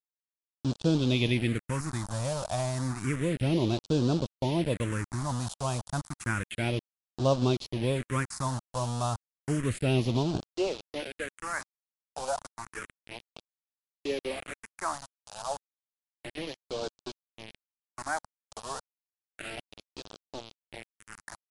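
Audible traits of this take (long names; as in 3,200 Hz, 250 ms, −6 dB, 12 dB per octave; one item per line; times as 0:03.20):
a quantiser's noise floor 6 bits, dither none
phaser sweep stages 4, 0.31 Hz, lowest notch 330–2,000 Hz
MP3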